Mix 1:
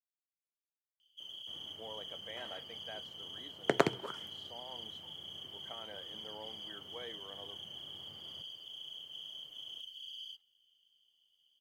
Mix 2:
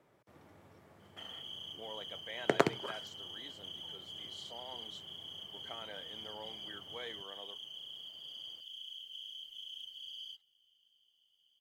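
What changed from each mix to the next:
speech: remove low-pass 1.4 kHz 6 dB/octave; second sound: entry -1.20 s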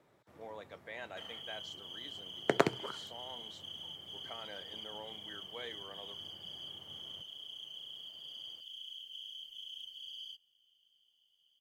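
speech: entry -1.40 s

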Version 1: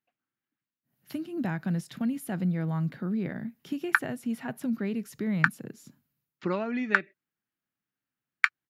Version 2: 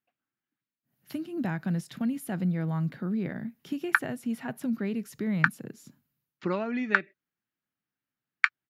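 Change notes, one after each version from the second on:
background: add low-pass 6.1 kHz 12 dB/octave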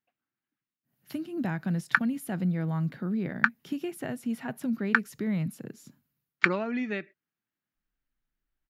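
background: entry -2.00 s

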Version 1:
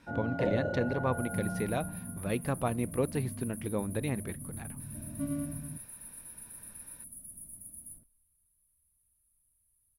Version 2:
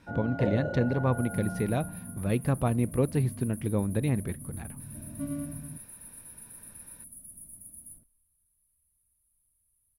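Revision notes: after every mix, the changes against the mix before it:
speech: add bass shelf 260 Hz +10 dB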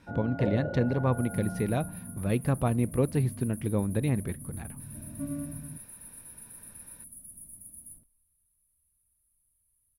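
first sound: add distance through air 440 m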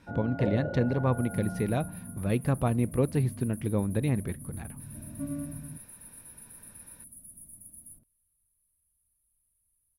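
reverb: off

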